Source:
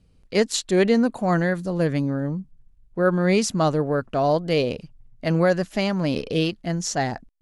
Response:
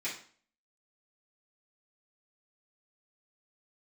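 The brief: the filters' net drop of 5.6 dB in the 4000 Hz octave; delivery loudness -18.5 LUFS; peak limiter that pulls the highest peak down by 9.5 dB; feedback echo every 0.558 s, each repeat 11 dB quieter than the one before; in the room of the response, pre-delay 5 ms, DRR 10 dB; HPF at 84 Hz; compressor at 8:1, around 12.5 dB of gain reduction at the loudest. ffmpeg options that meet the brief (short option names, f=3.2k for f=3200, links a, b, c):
-filter_complex "[0:a]highpass=84,equalizer=f=4k:t=o:g=-7.5,acompressor=threshold=-28dB:ratio=8,alimiter=level_in=1dB:limit=-24dB:level=0:latency=1,volume=-1dB,aecho=1:1:558|1116|1674:0.282|0.0789|0.0221,asplit=2[a][b];[1:a]atrim=start_sample=2205,adelay=5[c];[b][c]afir=irnorm=-1:irlink=0,volume=-14dB[d];[a][d]amix=inputs=2:normalize=0,volume=15.5dB"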